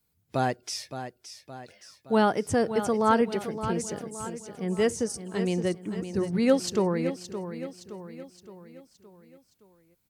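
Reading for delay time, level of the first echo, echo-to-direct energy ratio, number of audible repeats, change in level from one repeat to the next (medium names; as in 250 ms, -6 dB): 568 ms, -10.5 dB, -9.0 dB, 5, -6.0 dB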